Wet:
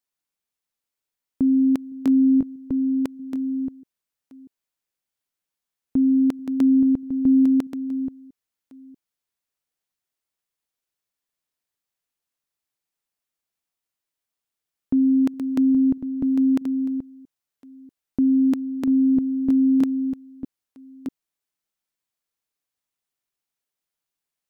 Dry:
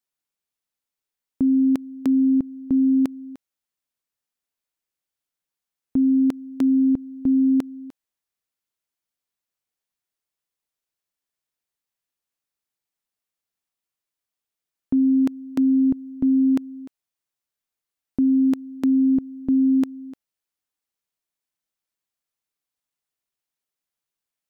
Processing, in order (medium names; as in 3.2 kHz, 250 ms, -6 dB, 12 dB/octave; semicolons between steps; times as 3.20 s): chunks repeated in reverse 639 ms, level -8 dB